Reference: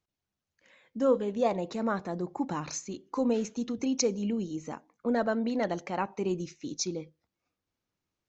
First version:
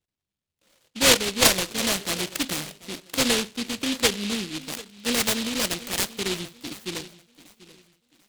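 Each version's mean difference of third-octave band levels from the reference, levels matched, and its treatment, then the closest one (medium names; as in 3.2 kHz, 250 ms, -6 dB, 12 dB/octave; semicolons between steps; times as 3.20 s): 14.5 dB: filtered feedback delay 739 ms, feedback 33%, low-pass 4.2 kHz, level -17 dB; low-pass sweep 740 Hz -> 1.6 kHz, 4.18–4.99 s; dynamic bell 570 Hz, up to +3 dB, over -38 dBFS, Q 0.81; delay time shaken by noise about 3.2 kHz, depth 0.39 ms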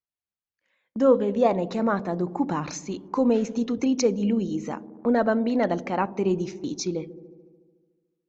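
2.5 dB: gate -49 dBFS, range -23 dB; low-pass 2.6 kHz 6 dB/octave; on a send: feedback echo behind a low-pass 73 ms, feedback 74%, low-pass 450 Hz, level -13.5 dB; on the sum: tape noise reduction on one side only encoder only; trim +6.5 dB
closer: second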